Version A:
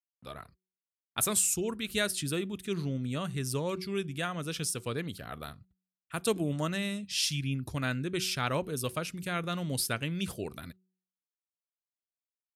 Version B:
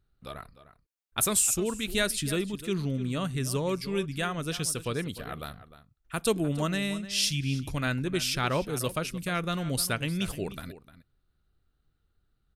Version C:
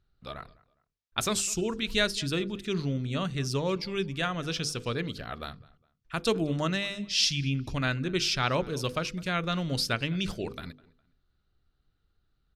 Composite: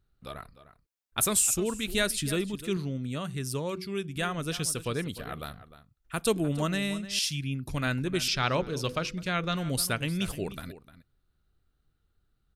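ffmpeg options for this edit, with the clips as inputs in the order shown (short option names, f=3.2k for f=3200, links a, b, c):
-filter_complex "[0:a]asplit=2[a][b];[1:a]asplit=4[c][d][e][f];[c]atrim=end=2.772[g];[a]atrim=start=2.768:end=4.162[h];[d]atrim=start=4.158:end=7.192[i];[b]atrim=start=7.188:end=7.692[j];[e]atrim=start=7.688:end=8.282[k];[2:a]atrim=start=8.278:end=9.562[l];[f]atrim=start=9.558[m];[g][h]acrossfade=d=0.004:c1=hsin:c2=hsin[n];[n][i]acrossfade=d=0.004:c1=hsin:c2=hsin[o];[o][j]acrossfade=d=0.004:c1=hsin:c2=hsin[p];[p][k]acrossfade=d=0.004:c1=hsin:c2=hsin[q];[q][l]acrossfade=d=0.004:c1=hsin:c2=hsin[r];[r][m]acrossfade=d=0.004:c1=hsin:c2=hsin"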